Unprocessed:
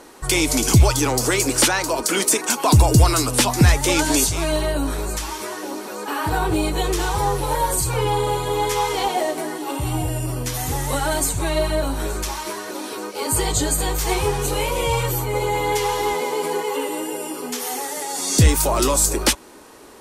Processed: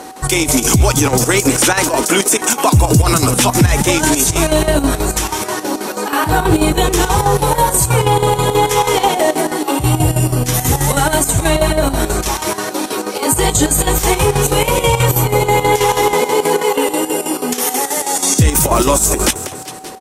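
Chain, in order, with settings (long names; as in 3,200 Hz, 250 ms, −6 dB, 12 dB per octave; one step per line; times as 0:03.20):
high-pass filter 130 Hz 6 dB per octave
bass and treble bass +6 dB, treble +2 dB
on a send: echo with shifted repeats 193 ms, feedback 50%, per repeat +36 Hz, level −16 dB
on the sum: square-wave tremolo 6.2 Hz, depth 65%, duty 70%
in parallel at −9 dB: gain into a clipping stage and back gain 5.5 dB
on the sum: steady tone 760 Hz −41 dBFS
dynamic equaliser 4,500 Hz, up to −7 dB, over −40 dBFS, Q 4.2
boost into a limiter +9 dB
level −1.5 dB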